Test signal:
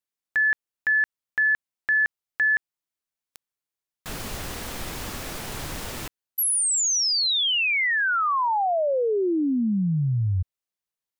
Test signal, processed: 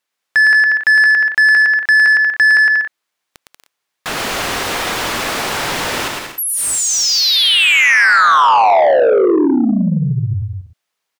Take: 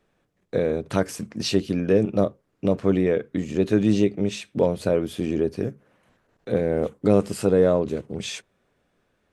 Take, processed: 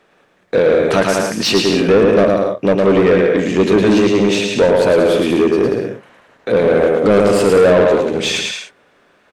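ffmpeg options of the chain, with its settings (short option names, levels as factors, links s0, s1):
-filter_complex "[0:a]aecho=1:1:110|187|240.9|278.6|305:0.631|0.398|0.251|0.158|0.1,asplit=2[s0][s1];[s1]highpass=f=720:p=1,volume=14.1,asoftclip=type=tanh:threshold=0.668[s2];[s0][s2]amix=inputs=2:normalize=0,lowpass=f=3100:p=1,volume=0.501,volume=1.19"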